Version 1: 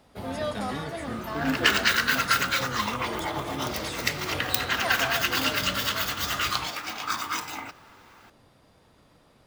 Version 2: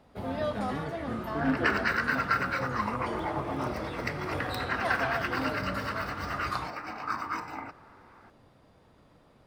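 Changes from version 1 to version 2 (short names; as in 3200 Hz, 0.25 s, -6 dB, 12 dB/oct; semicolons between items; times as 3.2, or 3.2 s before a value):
speech: add air absorption 450 m; first sound: add high shelf 2800 Hz -9.5 dB; second sound: add running mean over 13 samples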